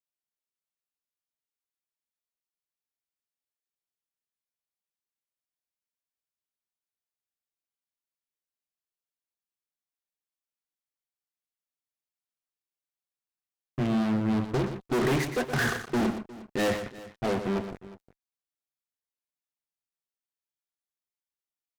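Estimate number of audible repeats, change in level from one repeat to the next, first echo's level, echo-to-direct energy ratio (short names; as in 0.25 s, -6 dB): 2, no steady repeat, -9.5 dB, -9.0 dB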